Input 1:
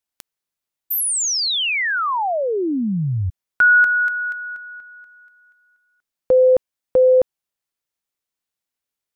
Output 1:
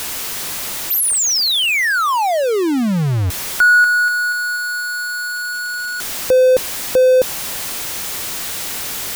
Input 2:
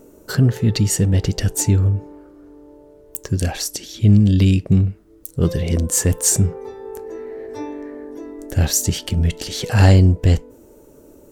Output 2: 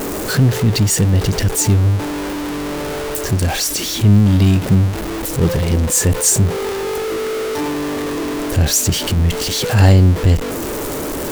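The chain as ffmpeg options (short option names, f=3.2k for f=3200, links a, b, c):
-af "aeval=exprs='val(0)+0.5*0.133*sgn(val(0))':c=same"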